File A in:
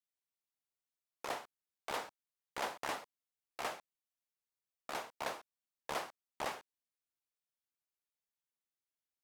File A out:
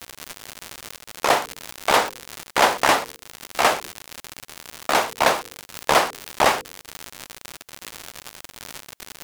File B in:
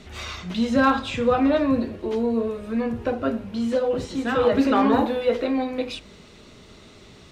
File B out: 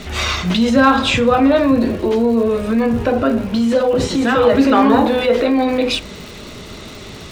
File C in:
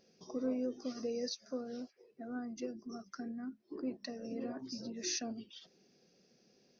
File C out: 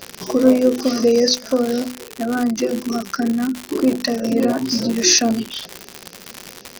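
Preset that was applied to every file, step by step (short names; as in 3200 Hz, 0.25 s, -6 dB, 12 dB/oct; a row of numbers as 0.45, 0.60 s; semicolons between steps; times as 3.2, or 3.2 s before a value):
notches 50/100/150/200/250/300/350/400/450/500 Hz; in parallel at -2 dB: negative-ratio compressor -30 dBFS, ratio -1; on the sum: crackle 130/s -35 dBFS; normalise peaks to -1.5 dBFS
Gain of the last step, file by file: +17.5, +6.5, +18.5 dB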